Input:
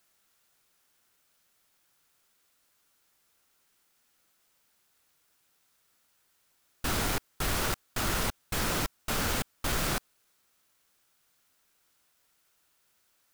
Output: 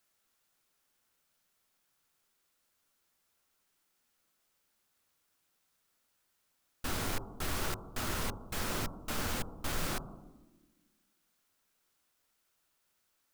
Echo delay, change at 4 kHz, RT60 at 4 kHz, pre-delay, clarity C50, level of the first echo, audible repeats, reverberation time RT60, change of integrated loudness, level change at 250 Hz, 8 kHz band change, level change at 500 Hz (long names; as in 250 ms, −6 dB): no echo audible, −6.5 dB, 1.0 s, 3 ms, 13.0 dB, no echo audible, no echo audible, 1.2 s, −6.0 dB, −4.5 dB, −6.5 dB, −5.5 dB